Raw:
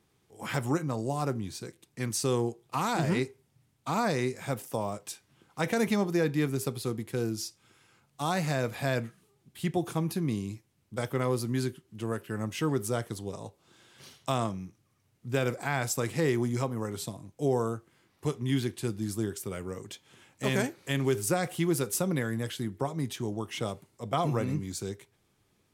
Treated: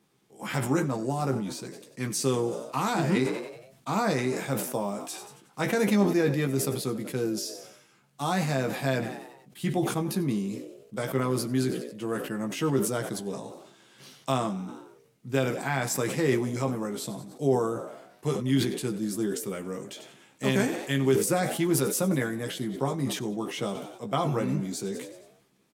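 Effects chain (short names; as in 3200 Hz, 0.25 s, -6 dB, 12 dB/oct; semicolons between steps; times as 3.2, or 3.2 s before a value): resonant low shelf 120 Hz -10 dB, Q 1.5; doubler 15 ms -5.5 dB; frequency-shifting echo 93 ms, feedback 58%, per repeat +54 Hz, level -18 dB; sustainer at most 65 dB/s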